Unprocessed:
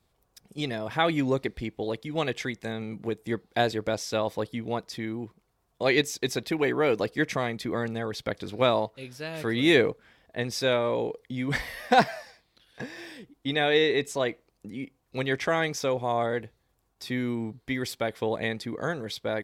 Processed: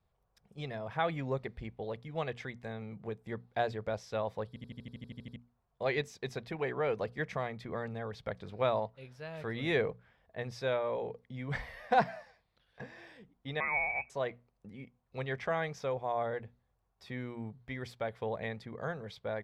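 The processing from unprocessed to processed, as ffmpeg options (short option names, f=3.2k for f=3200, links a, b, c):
-filter_complex "[0:a]asettb=1/sr,asplit=3[a][b][c];[a]atrim=end=13.604[d];[b]atrim=start=13.6:end=14.1,asetpts=PTS-STARTPTS,afade=t=in:d=0.004:c=qsin,afade=t=out:st=0.496:d=0.004:c=qsin,lowpass=f=2.3k:t=q:w=0.5098,lowpass=f=2.3k:t=q:w=0.6013,lowpass=f=2.3k:t=q:w=0.9,lowpass=f=2.3k:t=q:w=2.563,afreqshift=-2700[e];[c]atrim=start=14.096[f];[d][e]acrossfade=d=0.004:c1=hsin:c2=qsin[g];[g][f]acrossfade=d=0.004:c1=qsin:c2=hsin,asplit=12[h][i][j][k][l][m][n][o][p][q][r][s];[h]atrim=end=4.562[t];[i]atrim=start=4.478:end=4.562[u];[j]atrim=start=4.478:end=4.562[v];[k]atrim=start=4.478:end=4.562[w];[l]atrim=start=4.478:end=4.562[x];[m]atrim=start=4.478:end=4.562[y];[n]atrim=start=4.478:end=4.562[z];[o]atrim=start=4.478:end=4.562[aa];[p]atrim=start=4.478:end=4.562[ab];[q]atrim=start=4.478:end=4.562[ac];[r]atrim=start=4.478:end=4.562[ad];[s]atrim=start=5.358[ae];[t][u]acrossfade=d=0.004:c1=hsin:c2=hsin[af];[af][v]acrossfade=d=0.004:c1=hsin:c2=hsin[ag];[ag][w]acrossfade=d=0.004:c1=hsin:c2=hsin[ah];[ah][x]acrossfade=d=0.004:c1=hsin:c2=hsin[ai];[ai][y]acrossfade=d=0.004:c1=hsin:c2=hsin[aj];[aj][z]acrossfade=d=0.004:c1=hsin:c2=hsin[ak];[ak][aa]acrossfade=d=0.004:c1=hsin:c2=hsin[al];[al][ab]acrossfade=d=0.004:c1=hsin:c2=hsin[am];[am][ac]acrossfade=d=0.004:c1=hsin:c2=hsin[an];[an][ad]acrossfade=d=0.004:c1=hsin:c2=hsin[ao];[ao][ae]acrossfade=d=0.004:c1=hsin:c2=hsin,lowpass=f=1.1k:p=1,equalizer=f=300:w=1.9:g=-13,bandreject=f=60:t=h:w=6,bandreject=f=120:t=h:w=6,bandreject=f=180:t=h:w=6,bandreject=f=240:t=h:w=6,volume=-3.5dB"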